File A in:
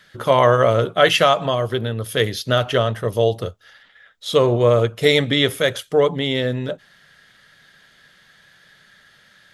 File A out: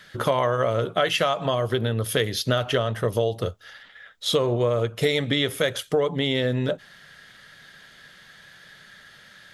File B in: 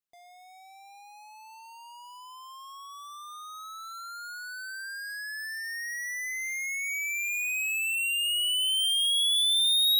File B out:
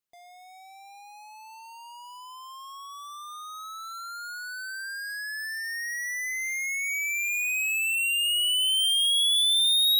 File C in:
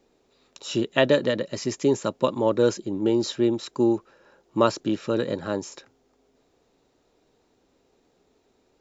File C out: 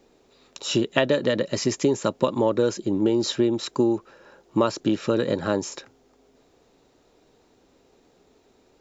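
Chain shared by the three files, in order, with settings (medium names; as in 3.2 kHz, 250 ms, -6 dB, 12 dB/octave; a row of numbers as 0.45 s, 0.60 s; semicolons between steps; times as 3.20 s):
compression 5:1, threshold -23 dBFS; normalise loudness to -24 LUFS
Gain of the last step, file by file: +3.0 dB, +2.5 dB, +5.5 dB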